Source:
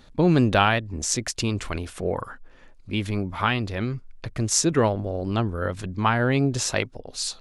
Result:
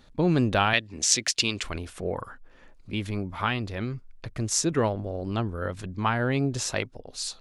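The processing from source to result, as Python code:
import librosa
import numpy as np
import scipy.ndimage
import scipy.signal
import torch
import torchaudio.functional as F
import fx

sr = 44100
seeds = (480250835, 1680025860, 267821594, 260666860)

y = fx.weighting(x, sr, curve='D', at=(0.73, 1.63))
y = fx.band_squash(y, sr, depth_pct=40, at=(2.26, 2.93))
y = y * 10.0 ** (-4.0 / 20.0)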